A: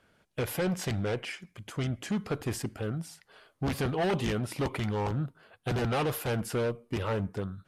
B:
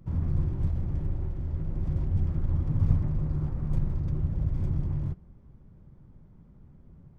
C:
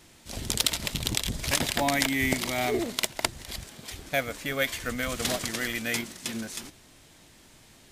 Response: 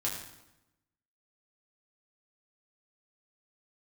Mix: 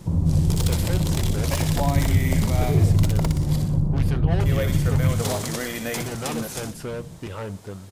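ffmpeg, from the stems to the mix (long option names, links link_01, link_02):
-filter_complex "[0:a]adelay=300,volume=-2.5dB,asplit=2[link_01][link_02];[link_02]volume=-24dB[link_03];[1:a]lowpass=1000,equalizer=frequency=170:width_type=o:width=0.36:gain=8.5,volume=0dB,asplit=2[link_04][link_05];[link_05]volume=-4dB[link_06];[2:a]bass=frequency=250:gain=-1,treble=frequency=4000:gain=8,asoftclip=type=tanh:threshold=-12.5dB,volume=-4dB,asplit=3[link_07][link_08][link_09];[link_07]atrim=end=3.66,asetpts=PTS-STARTPTS,afade=type=out:start_time=3.656:duration=0.004:curve=hsin[link_10];[link_08]atrim=start=3.66:end=4.4,asetpts=PTS-STARTPTS,volume=0[link_11];[link_09]atrim=start=4.4,asetpts=PTS-STARTPTS,afade=type=in:duration=0.004:curve=hsin[link_12];[link_10][link_11][link_12]concat=n=3:v=0:a=1,asplit=2[link_13][link_14];[link_14]volume=-8.5dB[link_15];[link_04][link_13]amix=inputs=2:normalize=0,equalizer=frequency=125:width_type=o:width=1:gain=5,equalizer=frequency=250:width_type=o:width=1:gain=6,equalizer=frequency=500:width_type=o:width=1:gain=11,equalizer=frequency=1000:width_type=o:width=1:gain=10,acompressor=threshold=-24dB:ratio=3,volume=0dB[link_16];[3:a]atrim=start_sample=2205[link_17];[link_03][link_06]amix=inputs=2:normalize=0[link_18];[link_18][link_17]afir=irnorm=-1:irlink=0[link_19];[link_15]aecho=0:1:61|122|183|244|305|366|427:1|0.51|0.26|0.133|0.0677|0.0345|0.0176[link_20];[link_01][link_16][link_19][link_20]amix=inputs=4:normalize=0"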